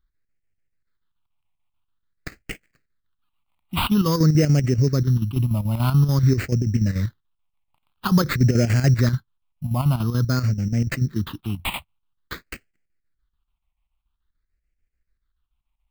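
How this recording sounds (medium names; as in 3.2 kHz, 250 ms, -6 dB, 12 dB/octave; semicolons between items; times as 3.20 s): chopped level 6.9 Hz, depth 60%, duty 70%; aliases and images of a low sample rate 5.7 kHz, jitter 0%; phasing stages 6, 0.49 Hz, lowest notch 430–1000 Hz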